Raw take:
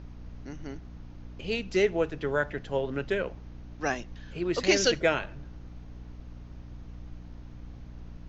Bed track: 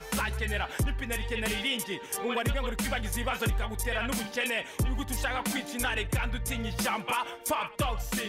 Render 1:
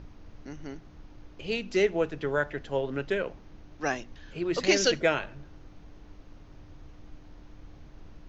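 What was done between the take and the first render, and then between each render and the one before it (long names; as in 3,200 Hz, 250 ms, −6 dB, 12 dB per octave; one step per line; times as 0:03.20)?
hum removal 60 Hz, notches 4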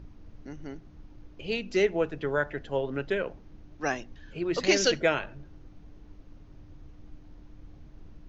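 broadband denoise 6 dB, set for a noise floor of −51 dBFS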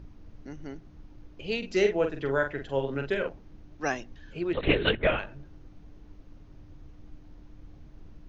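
0:01.58–0:03.29: double-tracking delay 44 ms −6 dB
0:04.53–0:05.19: linear-prediction vocoder at 8 kHz whisper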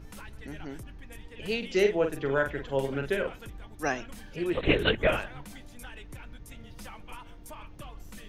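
mix in bed track −16.5 dB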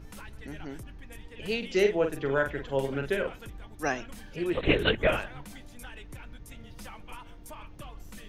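no processing that can be heard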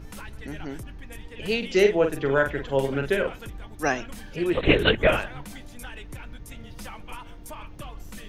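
level +5 dB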